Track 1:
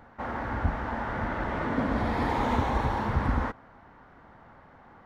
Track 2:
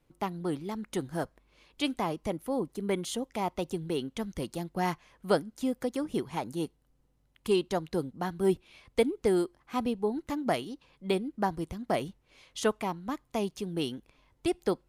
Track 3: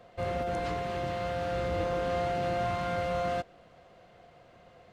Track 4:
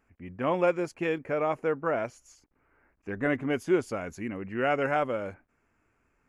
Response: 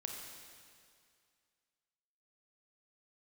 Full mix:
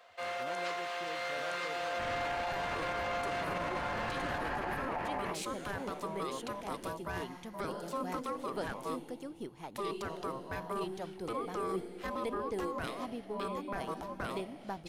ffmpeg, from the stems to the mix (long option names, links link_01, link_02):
-filter_complex "[0:a]adelay=1800,volume=-2dB[link_01];[1:a]aeval=exprs='if(lt(val(0),0),0.708*val(0),val(0))':channel_layout=same,adelay=2300,volume=-0.5dB,asplit=3[link_02][link_03][link_04];[link_03]volume=-8dB[link_05];[link_04]volume=-10dB[link_06];[2:a]highpass=1000,volume=2.5dB,asplit=2[link_07][link_08];[link_08]volume=-3.5dB[link_09];[3:a]volume=-19dB,asplit=2[link_10][link_11];[link_11]volume=-4.5dB[link_12];[link_01][link_02]amix=inputs=2:normalize=0,aeval=exprs='val(0)*sin(2*PI*800*n/s)':channel_layout=same,alimiter=limit=-24dB:level=0:latency=1,volume=0dB[link_13];[4:a]atrim=start_sample=2205[link_14];[link_05][link_14]afir=irnorm=-1:irlink=0[link_15];[link_06][link_09][link_12]amix=inputs=3:normalize=0,aecho=0:1:965:1[link_16];[link_07][link_10][link_13][link_15][link_16]amix=inputs=5:normalize=0,alimiter=level_in=3dB:limit=-24dB:level=0:latency=1:release=18,volume=-3dB"